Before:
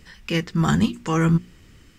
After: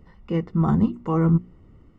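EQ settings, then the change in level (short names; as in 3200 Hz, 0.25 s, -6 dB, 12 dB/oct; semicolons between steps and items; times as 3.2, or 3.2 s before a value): polynomial smoothing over 65 samples; 0.0 dB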